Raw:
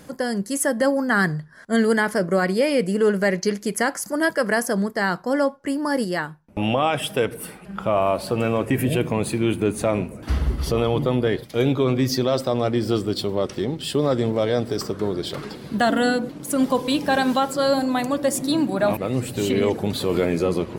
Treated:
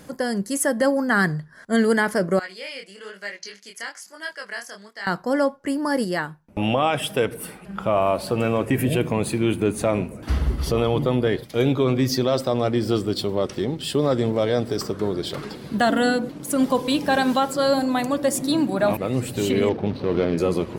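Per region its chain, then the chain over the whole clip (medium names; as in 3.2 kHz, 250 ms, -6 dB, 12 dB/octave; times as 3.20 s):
2.39–5.07 s: band-pass filter 3.4 kHz, Q 1 + chorus 1.1 Hz, delay 19.5 ms, depth 7.2 ms
19.69–20.38 s: median filter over 25 samples + Savitzky-Golay filter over 15 samples
whole clip: none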